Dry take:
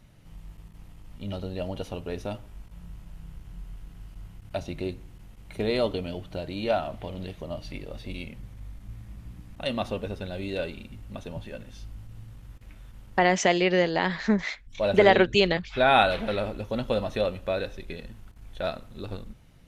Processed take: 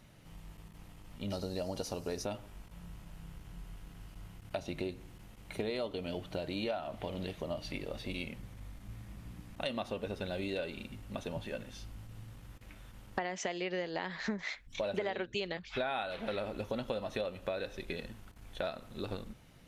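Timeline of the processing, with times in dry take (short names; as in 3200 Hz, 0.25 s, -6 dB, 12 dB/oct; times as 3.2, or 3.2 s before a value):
1.3–2.25 resonant high shelf 4000 Hz +7 dB, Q 3
whole clip: low shelf 130 Hz -9.5 dB; compressor 8:1, threshold -34 dBFS; gain +1 dB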